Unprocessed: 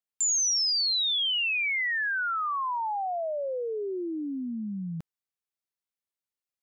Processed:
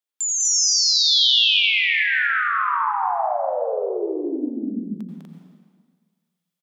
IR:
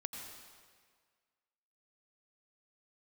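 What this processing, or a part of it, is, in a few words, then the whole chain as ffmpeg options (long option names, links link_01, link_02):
stadium PA: -filter_complex "[0:a]highpass=frequency=230:width=0.5412,highpass=frequency=230:width=1.3066,equalizer=frequency=3400:width_type=o:width=0.25:gain=5.5,aecho=1:1:201.2|244.9:0.794|0.891[link_01];[1:a]atrim=start_sample=2205[link_02];[link_01][link_02]afir=irnorm=-1:irlink=0,volume=5dB"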